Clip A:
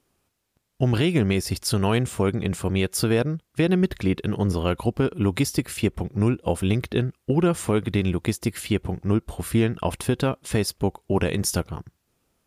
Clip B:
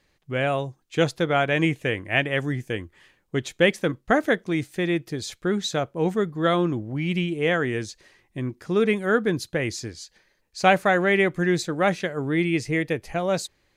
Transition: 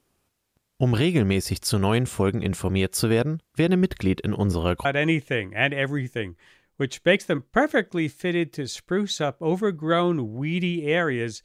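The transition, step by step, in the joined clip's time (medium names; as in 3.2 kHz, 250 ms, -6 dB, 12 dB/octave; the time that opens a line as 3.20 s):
clip A
4.85 s: go over to clip B from 1.39 s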